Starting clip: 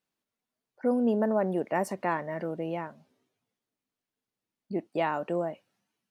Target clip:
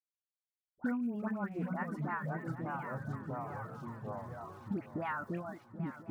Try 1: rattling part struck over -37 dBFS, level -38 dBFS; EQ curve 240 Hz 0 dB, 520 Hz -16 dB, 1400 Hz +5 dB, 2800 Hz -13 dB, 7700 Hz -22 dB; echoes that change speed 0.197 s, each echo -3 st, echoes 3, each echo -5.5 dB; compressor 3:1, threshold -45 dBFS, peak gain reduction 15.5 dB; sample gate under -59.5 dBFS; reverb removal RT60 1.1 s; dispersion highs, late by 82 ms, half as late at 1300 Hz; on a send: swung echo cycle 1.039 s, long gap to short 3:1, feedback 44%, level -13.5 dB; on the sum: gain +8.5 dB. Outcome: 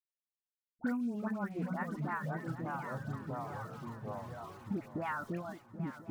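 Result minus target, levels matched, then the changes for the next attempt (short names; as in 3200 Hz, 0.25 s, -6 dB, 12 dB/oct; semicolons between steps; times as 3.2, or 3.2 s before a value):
sample gate: distortion +8 dB
change: sample gate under -66 dBFS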